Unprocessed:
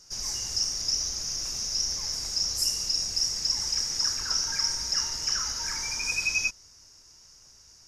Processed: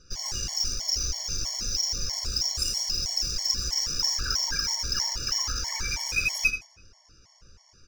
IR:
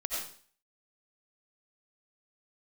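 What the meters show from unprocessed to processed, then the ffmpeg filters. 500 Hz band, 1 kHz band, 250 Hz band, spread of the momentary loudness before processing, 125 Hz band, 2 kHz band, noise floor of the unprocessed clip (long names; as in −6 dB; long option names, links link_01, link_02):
+2.5 dB, +1.5 dB, +3.5 dB, 4 LU, +7.5 dB, +2.0 dB, −55 dBFS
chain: -filter_complex "[0:a]lowshelf=frequency=87:gain=9.5,asplit=2[link_01][link_02];[link_02]alimiter=limit=-23dB:level=0:latency=1,volume=-1dB[link_03];[link_01][link_03]amix=inputs=2:normalize=0,aecho=1:1:83|166|249|332:0.398|0.155|0.0606|0.0236,adynamicsmooth=sensitivity=3:basefreq=3800,afftfilt=real='re*gt(sin(2*PI*3.1*pts/sr)*(1-2*mod(floor(b*sr/1024/580),2)),0)':imag='im*gt(sin(2*PI*3.1*pts/sr)*(1-2*mod(floor(b*sr/1024/580),2)),0)':win_size=1024:overlap=0.75"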